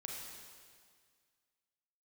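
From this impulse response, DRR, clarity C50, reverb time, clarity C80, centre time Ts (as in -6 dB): -1.5 dB, 0.0 dB, 1.9 s, 2.0 dB, 97 ms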